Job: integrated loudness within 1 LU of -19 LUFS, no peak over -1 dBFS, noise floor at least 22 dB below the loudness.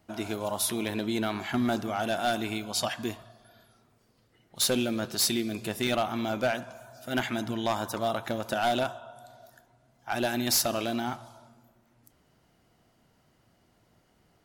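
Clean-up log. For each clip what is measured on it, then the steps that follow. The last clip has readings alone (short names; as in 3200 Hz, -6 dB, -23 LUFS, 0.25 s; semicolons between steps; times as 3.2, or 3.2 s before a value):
clipped 0.5%; flat tops at -20.0 dBFS; dropouts 1; longest dropout 2.9 ms; loudness -29.5 LUFS; peak -20.0 dBFS; loudness target -19.0 LUFS
-> clip repair -20 dBFS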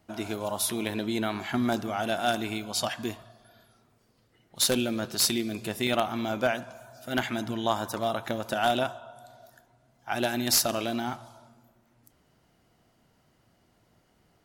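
clipped 0.0%; dropouts 1; longest dropout 2.9 ms
-> interpolate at 5.87, 2.9 ms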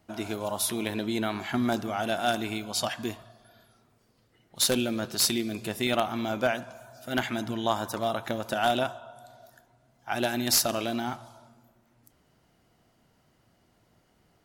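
dropouts 0; loudness -28.5 LUFS; peak -11.0 dBFS; loudness target -19.0 LUFS
-> gain +9.5 dB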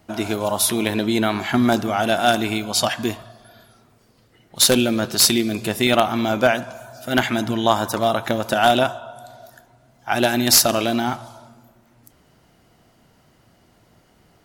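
loudness -19.0 LUFS; peak -1.5 dBFS; noise floor -57 dBFS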